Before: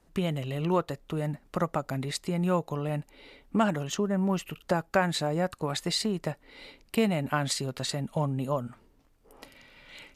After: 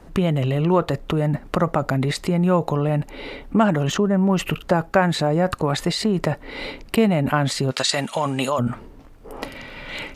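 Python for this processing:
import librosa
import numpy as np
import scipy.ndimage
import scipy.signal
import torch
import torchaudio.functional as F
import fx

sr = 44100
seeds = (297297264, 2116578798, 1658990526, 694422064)

p1 = fx.weighting(x, sr, curve='ITU-R 468', at=(7.7, 8.58), fade=0.02)
p2 = fx.over_compress(p1, sr, threshold_db=-39.0, ratio=-1.0)
p3 = p1 + (p2 * librosa.db_to_amplitude(1.0))
p4 = fx.high_shelf(p3, sr, hz=3100.0, db=-10.0)
y = p4 * librosa.db_to_amplitude(7.5)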